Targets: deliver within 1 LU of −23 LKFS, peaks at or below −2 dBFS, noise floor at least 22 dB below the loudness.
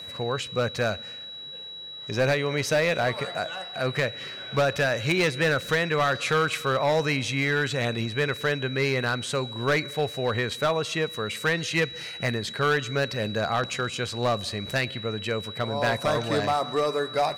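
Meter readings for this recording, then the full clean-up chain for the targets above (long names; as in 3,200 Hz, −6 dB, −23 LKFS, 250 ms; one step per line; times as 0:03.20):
share of clipped samples 1.5%; peaks flattened at −17.5 dBFS; interfering tone 3,900 Hz; level of the tone −37 dBFS; integrated loudness −26.0 LKFS; sample peak −17.5 dBFS; target loudness −23.0 LKFS
→ clipped peaks rebuilt −17.5 dBFS
notch filter 3,900 Hz, Q 30
level +3 dB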